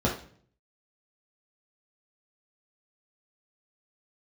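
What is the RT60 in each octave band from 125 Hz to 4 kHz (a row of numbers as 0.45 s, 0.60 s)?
0.80 s, 0.65 s, 0.55 s, 0.45 s, 0.45 s, 0.45 s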